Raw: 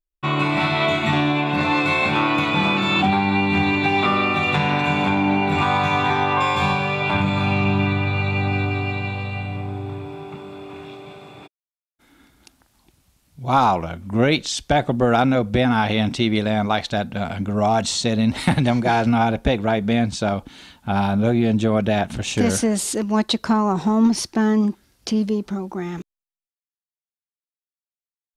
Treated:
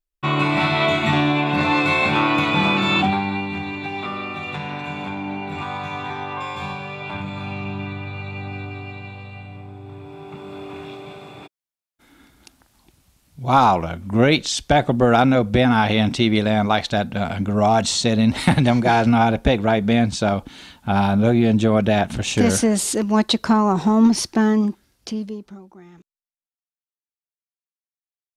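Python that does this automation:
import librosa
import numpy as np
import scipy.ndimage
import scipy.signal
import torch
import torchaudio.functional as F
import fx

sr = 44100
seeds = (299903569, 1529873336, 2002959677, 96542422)

y = fx.gain(x, sr, db=fx.line((2.95, 1.0), (3.61, -9.5), (9.78, -9.5), (10.57, 2.0), (24.38, 2.0), (25.09, -5.0), (25.78, -17.0)))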